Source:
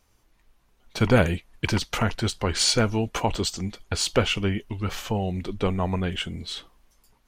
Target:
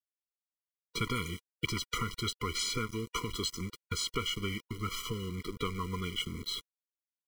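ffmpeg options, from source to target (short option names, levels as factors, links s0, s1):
-filter_complex "[0:a]acrossover=split=780|3500[s0][s1][s2];[s0]acompressor=threshold=0.0158:ratio=4[s3];[s1]acompressor=threshold=0.0224:ratio=4[s4];[s2]acompressor=threshold=0.02:ratio=4[s5];[s3][s4][s5]amix=inputs=3:normalize=0,aeval=exprs='val(0)*gte(abs(val(0)),0.0119)':c=same,afftfilt=real='re*eq(mod(floor(b*sr/1024/480),2),0)':imag='im*eq(mod(floor(b*sr/1024/480),2),0)':win_size=1024:overlap=0.75"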